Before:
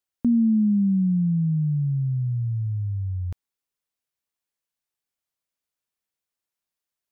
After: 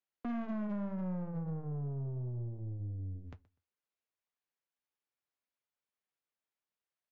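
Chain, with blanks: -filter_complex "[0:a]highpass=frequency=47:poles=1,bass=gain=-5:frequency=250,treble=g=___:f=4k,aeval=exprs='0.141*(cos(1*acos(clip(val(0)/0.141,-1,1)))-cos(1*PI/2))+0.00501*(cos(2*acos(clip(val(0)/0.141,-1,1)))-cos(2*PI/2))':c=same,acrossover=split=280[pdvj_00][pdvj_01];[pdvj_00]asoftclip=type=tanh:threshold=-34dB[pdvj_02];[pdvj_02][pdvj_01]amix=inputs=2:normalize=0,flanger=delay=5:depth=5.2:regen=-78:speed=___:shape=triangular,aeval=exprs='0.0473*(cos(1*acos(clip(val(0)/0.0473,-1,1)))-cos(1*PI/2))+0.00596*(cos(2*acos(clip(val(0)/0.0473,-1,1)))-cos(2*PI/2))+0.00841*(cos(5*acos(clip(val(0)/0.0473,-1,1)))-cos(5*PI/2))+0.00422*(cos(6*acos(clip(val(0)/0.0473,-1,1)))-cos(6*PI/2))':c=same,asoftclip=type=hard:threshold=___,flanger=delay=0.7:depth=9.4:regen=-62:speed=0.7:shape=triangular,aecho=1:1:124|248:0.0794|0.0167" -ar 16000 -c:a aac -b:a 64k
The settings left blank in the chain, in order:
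-13, 1.8, -29.5dB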